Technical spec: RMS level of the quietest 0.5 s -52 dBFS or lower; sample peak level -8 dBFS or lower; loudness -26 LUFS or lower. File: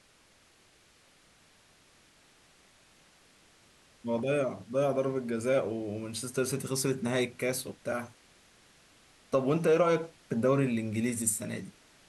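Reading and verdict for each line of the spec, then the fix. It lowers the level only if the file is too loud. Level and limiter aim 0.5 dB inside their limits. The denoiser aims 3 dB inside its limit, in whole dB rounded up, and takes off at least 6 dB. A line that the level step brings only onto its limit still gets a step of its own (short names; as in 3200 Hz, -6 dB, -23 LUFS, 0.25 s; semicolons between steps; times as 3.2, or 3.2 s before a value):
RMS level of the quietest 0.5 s -63 dBFS: OK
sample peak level -14.0 dBFS: OK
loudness -30.5 LUFS: OK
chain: none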